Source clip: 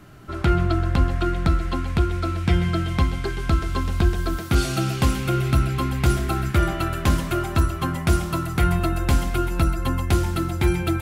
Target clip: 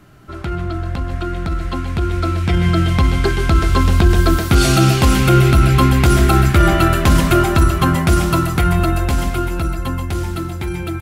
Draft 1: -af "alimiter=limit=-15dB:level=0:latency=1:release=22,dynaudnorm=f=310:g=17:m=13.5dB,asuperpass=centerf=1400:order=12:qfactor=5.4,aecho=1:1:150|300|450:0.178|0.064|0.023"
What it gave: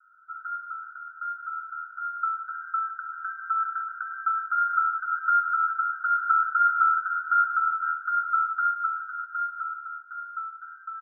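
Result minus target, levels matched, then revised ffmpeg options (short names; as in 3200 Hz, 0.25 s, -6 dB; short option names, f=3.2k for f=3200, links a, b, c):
1000 Hz band +7.5 dB
-af "alimiter=limit=-15dB:level=0:latency=1:release=22,dynaudnorm=f=310:g=17:m=13.5dB,aecho=1:1:150|300|450:0.178|0.064|0.023"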